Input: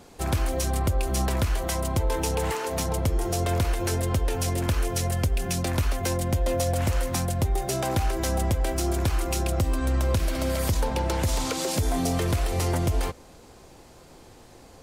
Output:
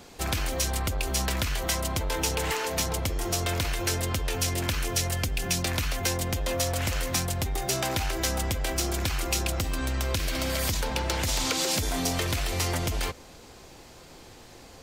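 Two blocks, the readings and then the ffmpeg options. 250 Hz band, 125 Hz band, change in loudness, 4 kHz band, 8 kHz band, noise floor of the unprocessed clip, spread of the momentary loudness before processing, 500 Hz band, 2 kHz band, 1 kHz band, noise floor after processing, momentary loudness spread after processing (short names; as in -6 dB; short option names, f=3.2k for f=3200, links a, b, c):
-4.0 dB, -5.0 dB, -1.5 dB, +5.0 dB, +3.0 dB, -50 dBFS, 2 LU, -4.0 dB, +3.5 dB, -2.5 dB, -49 dBFS, 3 LU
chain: -filter_complex "[0:a]equalizer=f=10k:t=o:w=0.8:g=-5.5,acrossover=split=1600[a][b];[a]asoftclip=type=tanh:threshold=-26dB[c];[b]acontrast=47[d];[c][d]amix=inputs=2:normalize=0"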